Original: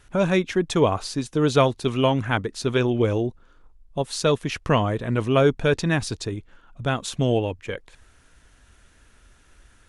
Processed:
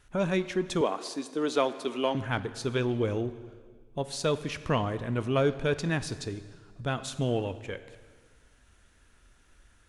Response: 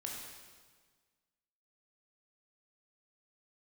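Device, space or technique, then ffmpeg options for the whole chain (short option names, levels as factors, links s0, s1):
saturated reverb return: -filter_complex "[0:a]asplit=2[s0][s1];[1:a]atrim=start_sample=2205[s2];[s1][s2]afir=irnorm=-1:irlink=0,asoftclip=type=tanh:threshold=0.0891,volume=0.473[s3];[s0][s3]amix=inputs=2:normalize=0,asettb=1/sr,asplit=3[s4][s5][s6];[s4]atrim=end=0.814[s7];[s5]atrim=start=0.81:end=2.15,asetpts=PTS-STARTPTS,afade=t=in:d=0.004:c=qsin,afade=t=out:st=1.336:d=0.004:c=qsin,highpass=f=240:w=0.5412,highpass=f=240:w=1.3066[s8];[s6]atrim=start=2.146[s9];[s7][s8]acrossfade=d=0.004:c1=hsin:c2=qsin[s10];[s10][s9]acrossfade=d=0.004:c1=qsin:c2=hsin,volume=0.376"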